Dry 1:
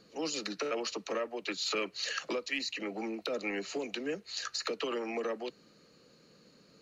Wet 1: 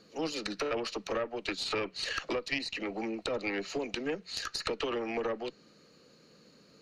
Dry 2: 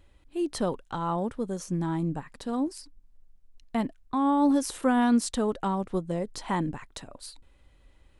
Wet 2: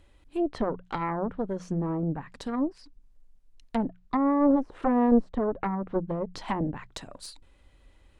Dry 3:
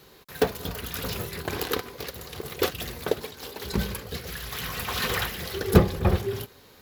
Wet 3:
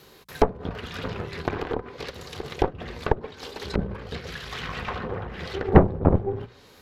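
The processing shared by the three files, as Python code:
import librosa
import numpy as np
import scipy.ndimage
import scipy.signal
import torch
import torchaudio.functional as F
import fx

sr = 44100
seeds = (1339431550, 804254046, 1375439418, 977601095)

y = fx.env_lowpass_down(x, sr, base_hz=700.0, full_db=-24.0)
y = fx.hum_notches(y, sr, base_hz=60, count=3)
y = fx.cheby_harmonics(y, sr, harmonics=(6,), levels_db=(-10,), full_scale_db=-3.5)
y = y * 10.0 ** (1.5 / 20.0)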